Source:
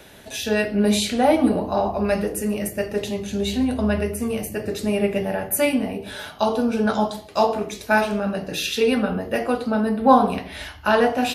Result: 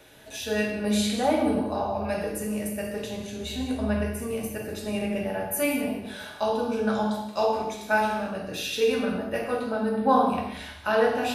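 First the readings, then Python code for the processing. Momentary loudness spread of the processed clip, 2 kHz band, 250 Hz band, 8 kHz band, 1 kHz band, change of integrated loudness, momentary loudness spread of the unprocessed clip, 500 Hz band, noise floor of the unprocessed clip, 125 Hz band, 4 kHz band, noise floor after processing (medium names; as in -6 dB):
10 LU, -4.5 dB, -6.0 dB, -5.5 dB, -5.0 dB, -5.5 dB, 9 LU, -4.5 dB, -43 dBFS, -5.5 dB, -5.5 dB, -42 dBFS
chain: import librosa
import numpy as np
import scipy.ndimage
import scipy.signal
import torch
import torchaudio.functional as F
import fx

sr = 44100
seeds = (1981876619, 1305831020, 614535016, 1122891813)

y = fx.hum_notches(x, sr, base_hz=50, count=8)
y = y + 10.0 ** (-15.5 / 20.0) * np.pad(y, (int(182 * sr / 1000.0), 0))[:len(y)]
y = fx.rev_gated(y, sr, seeds[0], gate_ms=300, shape='falling', drr_db=0.5)
y = F.gain(torch.from_numpy(y), -8.0).numpy()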